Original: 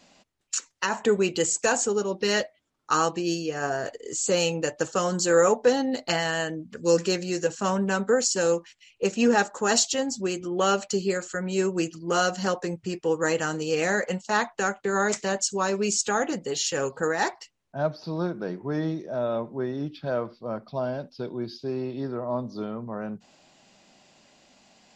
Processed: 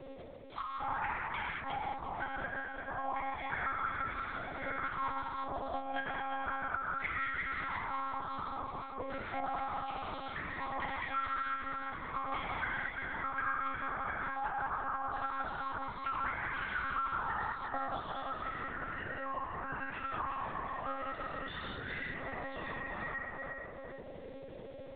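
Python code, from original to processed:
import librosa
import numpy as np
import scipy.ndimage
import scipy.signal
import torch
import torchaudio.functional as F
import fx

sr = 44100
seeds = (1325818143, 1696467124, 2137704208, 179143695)

y = fx.partial_stretch(x, sr, pct=90)
y = fx.low_shelf(y, sr, hz=330.0, db=-6.0)
y = fx.leveller(y, sr, passes=1)
y = fx.over_compress(y, sr, threshold_db=-35.0, ratio=-1.0)
y = 10.0 ** (-21.5 / 20.0) * np.tanh(y / 10.0 ** (-21.5 / 20.0))
y = fx.auto_wah(y, sr, base_hz=370.0, top_hz=1900.0, q=11.0, full_db=-29.0, direction='up')
y = fx.echo_feedback(y, sr, ms=352, feedback_pct=18, wet_db=-7)
y = fx.rev_gated(y, sr, seeds[0], gate_ms=250, shape='flat', drr_db=-5.0)
y = fx.lpc_monotone(y, sr, seeds[1], pitch_hz=270.0, order=10)
y = fx.band_squash(y, sr, depth_pct=70)
y = F.gain(torch.from_numpy(y), 8.5).numpy()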